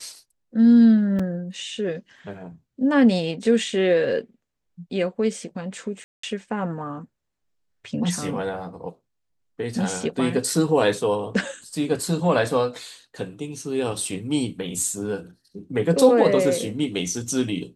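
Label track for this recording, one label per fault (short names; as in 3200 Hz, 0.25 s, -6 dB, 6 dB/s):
1.190000	1.190000	gap 4.7 ms
6.040000	6.230000	gap 0.194 s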